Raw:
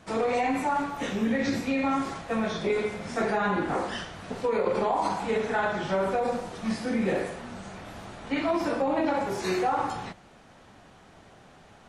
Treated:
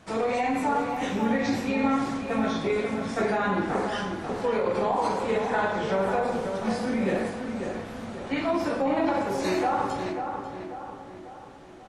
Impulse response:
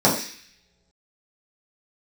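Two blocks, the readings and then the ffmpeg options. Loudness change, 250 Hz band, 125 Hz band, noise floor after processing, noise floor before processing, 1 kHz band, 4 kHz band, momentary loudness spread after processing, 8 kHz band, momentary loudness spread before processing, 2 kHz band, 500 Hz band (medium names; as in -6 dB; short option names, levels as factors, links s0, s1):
+1.0 dB, +2.0 dB, +2.0 dB, -44 dBFS, -54 dBFS, +1.5 dB, +0.5 dB, 12 LU, 0.0 dB, 10 LU, +0.5 dB, +1.5 dB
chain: -filter_complex "[0:a]asplit=2[s0][s1];[s1]adelay=542,lowpass=f=2100:p=1,volume=0.501,asplit=2[s2][s3];[s3]adelay=542,lowpass=f=2100:p=1,volume=0.51,asplit=2[s4][s5];[s5]adelay=542,lowpass=f=2100:p=1,volume=0.51,asplit=2[s6][s7];[s7]adelay=542,lowpass=f=2100:p=1,volume=0.51,asplit=2[s8][s9];[s9]adelay=542,lowpass=f=2100:p=1,volume=0.51,asplit=2[s10][s11];[s11]adelay=542,lowpass=f=2100:p=1,volume=0.51[s12];[s0][s2][s4][s6][s8][s10][s12]amix=inputs=7:normalize=0,asplit=2[s13][s14];[1:a]atrim=start_sample=2205,adelay=95[s15];[s14][s15]afir=irnorm=-1:irlink=0,volume=0.0158[s16];[s13][s16]amix=inputs=2:normalize=0"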